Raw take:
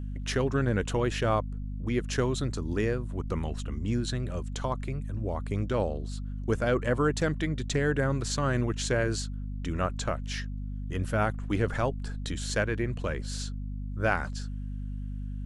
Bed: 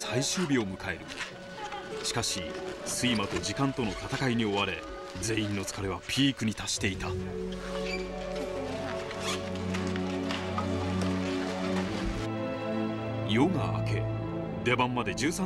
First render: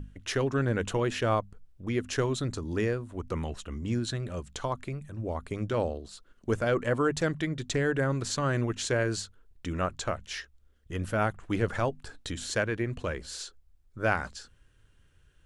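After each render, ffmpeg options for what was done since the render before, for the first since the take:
-af "bandreject=f=50:t=h:w=6,bandreject=f=100:t=h:w=6,bandreject=f=150:t=h:w=6,bandreject=f=200:t=h:w=6,bandreject=f=250:t=h:w=6"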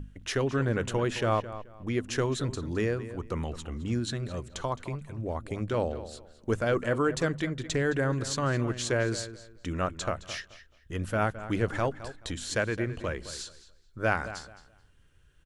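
-filter_complex "[0:a]asplit=2[a][b];[b]adelay=215,lowpass=f=4.4k:p=1,volume=-13.5dB,asplit=2[c][d];[d]adelay=215,lowpass=f=4.4k:p=1,volume=0.24,asplit=2[e][f];[f]adelay=215,lowpass=f=4.4k:p=1,volume=0.24[g];[a][c][e][g]amix=inputs=4:normalize=0"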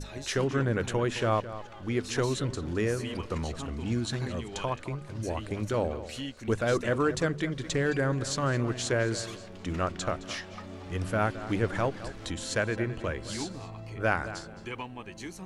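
-filter_complex "[1:a]volume=-12dB[a];[0:a][a]amix=inputs=2:normalize=0"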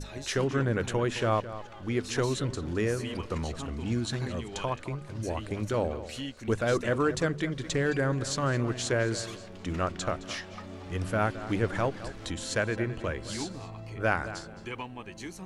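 -af anull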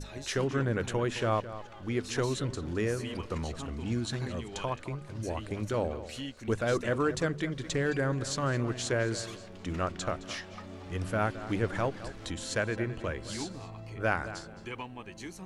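-af "volume=-2dB"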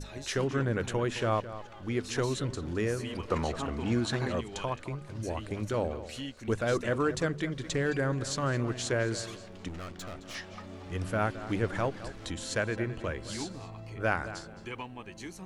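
-filter_complex "[0:a]asettb=1/sr,asplit=3[a][b][c];[a]atrim=end=3.284[d];[b]atrim=start=3.28:end=4.41,asetpts=PTS-STARTPTS,afade=t=in:d=0.004:c=qsin,afade=t=out:st=1.126:d=0.004:c=qsin,equalizer=f=880:w=0.35:g=8.5[e];[c]atrim=start=4.406[f];[d][e]acrossfade=d=0.004:c1=hsin:c2=qsin[g];[g][f]acrossfade=d=0.004:c1=qsin:c2=hsin,asettb=1/sr,asplit=3[h][i][j];[h]atrim=end=9.684[k];[i]atrim=start=9.68:end=10.35,asetpts=PTS-STARTPTS,afade=t=in:d=0.004:c=qsin,afade=t=out:st=0.666:d=0.004:c=qsin,aeval=exprs='(tanh(79.4*val(0)+0.55)-tanh(0.55))/79.4':c=same[l];[j]atrim=start=10.346[m];[k][l]acrossfade=d=0.004:c1=hsin:c2=qsin[n];[n][m]acrossfade=d=0.004:c1=qsin:c2=hsin"

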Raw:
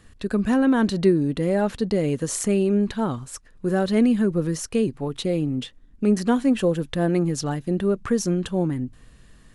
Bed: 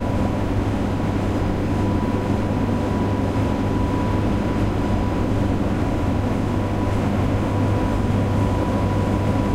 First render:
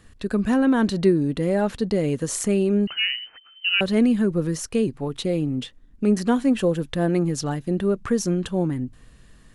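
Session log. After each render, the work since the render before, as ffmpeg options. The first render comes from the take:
-filter_complex "[0:a]asettb=1/sr,asplit=3[a][b][c];[a]atrim=end=2.874[d];[b]atrim=start=2.87:end=3.81,asetpts=PTS-STARTPTS,afade=t=in:d=0.004:c=qsin,afade=t=out:st=0.936:d=0.004:c=qsin,lowpass=f=2.6k:t=q:w=0.5098,lowpass=f=2.6k:t=q:w=0.6013,lowpass=f=2.6k:t=q:w=0.9,lowpass=f=2.6k:t=q:w=2.563,afreqshift=-3100[e];[c]atrim=start=3.806[f];[d][e]acrossfade=d=0.004:c1=hsin:c2=qsin[g];[g][f]acrossfade=d=0.004:c1=qsin:c2=hsin"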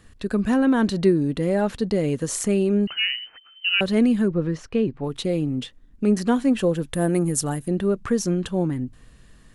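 -filter_complex "[0:a]asettb=1/sr,asplit=3[a][b][c];[a]atrim=end=4.284[d];[b]atrim=start=4.28:end=5.04,asetpts=PTS-STARTPTS,afade=t=in:d=0.004:c=qsin,afade=t=out:st=0.756:d=0.004:c=qsin,lowpass=3.1k[e];[c]atrim=start=5.036[f];[d][e]acrossfade=d=0.004:c1=hsin:c2=qsin[g];[g][f]acrossfade=d=0.004:c1=qsin:c2=hsin,asettb=1/sr,asplit=3[h][i][j];[h]atrim=end=6.934[k];[i]atrim=start=6.93:end=7.68,asetpts=PTS-STARTPTS,afade=t=in:d=0.004:c=qsin,afade=t=out:st=0.746:d=0.004:c=qsin,highshelf=f=7k:t=q:w=1.5:g=12[l];[j]atrim=start=7.676[m];[k][l]acrossfade=d=0.004:c1=hsin:c2=qsin[n];[n][m]acrossfade=d=0.004:c1=qsin:c2=hsin"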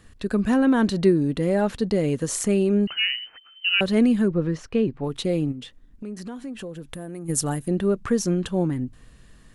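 -filter_complex "[0:a]asplit=3[a][b][c];[a]afade=t=out:st=5.51:d=0.02[d];[b]acompressor=threshold=-34dB:ratio=4:attack=3.2:release=140:knee=1:detection=peak,afade=t=in:st=5.51:d=0.02,afade=t=out:st=7.28:d=0.02[e];[c]afade=t=in:st=7.28:d=0.02[f];[d][e][f]amix=inputs=3:normalize=0"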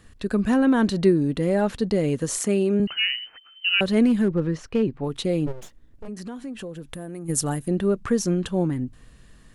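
-filter_complex "[0:a]asettb=1/sr,asplit=3[a][b][c];[a]atrim=end=2.394[d];[b]atrim=start=2.39:end=2.8,asetpts=PTS-STARTPTS,afade=t=in:d=0.004:c=qsin,afade=t=out:st=0.406:d=0.004:c=qsin,highpass=170[e];[c]atrim=start=2.796[f];[d][e]acrossfade=d=0.004:c1=hsin:c2=qsin[g];[g][f]acrossfade=d=0.004:c1=qsin:c2=hsin,asettb=1/sr,asplit=3[h][i][j];[h]atrim=end=4.064[k];[i]atrim=start=4.06:end=4.83,asetpts=PTS-STARTPTS,afade=t=in:d=0.004:c=qsin,afade=t=out:st=0.766:d=0.004:c=qsin,asoftclip=type=hard:threshold=-14.5dB[l];[j]atrim=start=4.826[m];[k][l]acrossfade=d=0.004:c1=hsin:c2=qsin[n];[n][m]acrossfade=d=0.004:c1=qsin:c2=hsin,asplit=3[o][p][q];[o]afade=t=out:st=5.46:d=0.02[r];[p]aeval=exprs='abs(val(0))':c=same,afade=t=in:st=5.46:d=0.02,afade=t=out:st=6.07:d=0.02[s];[q]afade=t=in:st=6.07:d=0.02[t];[r][s][t]amix=inputs=3:normalize=0"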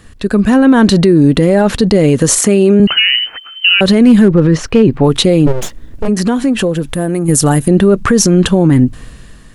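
-af "dynaudnorm=f=200:g=7:m=11.5dB,alimiter=level_in=11.5dB:limit=-1dB:release=50:level=0:latency=1"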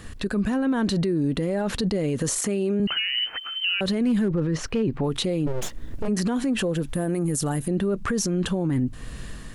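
-af "acompressor=threshold=-27dB:ratio=2,alimiter=limit=-17dB:level=0:latency=1:release=24"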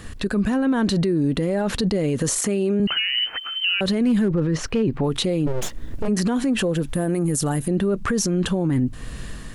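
-af "volume=3dB"

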